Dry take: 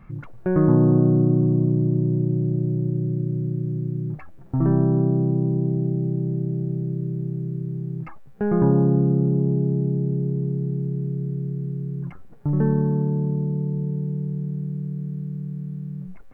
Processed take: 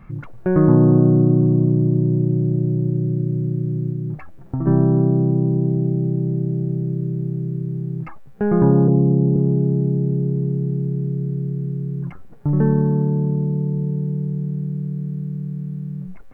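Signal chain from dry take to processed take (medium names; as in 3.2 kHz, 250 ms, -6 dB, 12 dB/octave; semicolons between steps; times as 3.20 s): 3.91–4.67 s: compression 6:1, threshold -24 dBFS, peak gain reduction 8.5 dB; 8.88–9.36 s: steep low-pass 1.1 kHz 72 dB/octave; trim +3.5 dB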